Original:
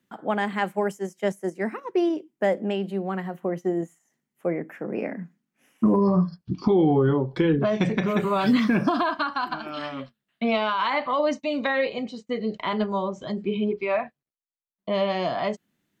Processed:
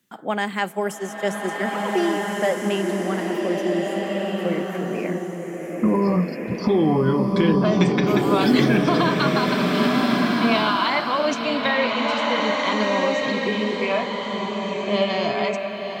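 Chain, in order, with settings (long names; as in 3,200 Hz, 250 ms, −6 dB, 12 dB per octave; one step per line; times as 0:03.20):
high-shelf EQ 3,000 Hz +11 dB
slow-attack reverb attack 1,650 ms, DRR −1 dB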